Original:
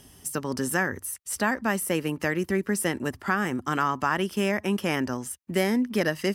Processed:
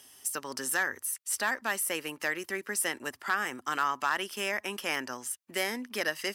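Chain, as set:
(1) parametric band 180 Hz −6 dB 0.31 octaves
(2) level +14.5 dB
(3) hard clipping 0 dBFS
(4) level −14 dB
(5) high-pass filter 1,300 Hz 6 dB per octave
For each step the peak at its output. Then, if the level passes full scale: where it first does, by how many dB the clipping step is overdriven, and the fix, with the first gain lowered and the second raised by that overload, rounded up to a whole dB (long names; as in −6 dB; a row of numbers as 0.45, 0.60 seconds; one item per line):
−10.5, +4.0, 0.0, −14.0, −13.5 dBFS
step 2, 4.0 dB
step 2 +10.5 dB, step 4 −10 dB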